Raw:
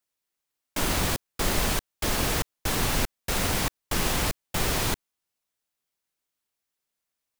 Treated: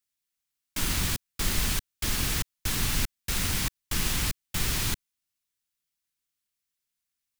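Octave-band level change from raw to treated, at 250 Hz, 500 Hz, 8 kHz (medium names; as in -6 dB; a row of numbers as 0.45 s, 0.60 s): -4.5 dB, -11.0 dB, 0.0 dB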